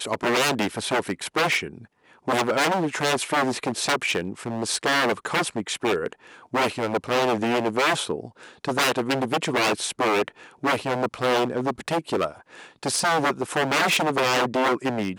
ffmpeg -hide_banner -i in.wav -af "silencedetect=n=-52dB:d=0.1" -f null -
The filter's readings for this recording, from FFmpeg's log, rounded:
silence_start: 1.87
silence_end: 2.04 | silence_duration: 0.17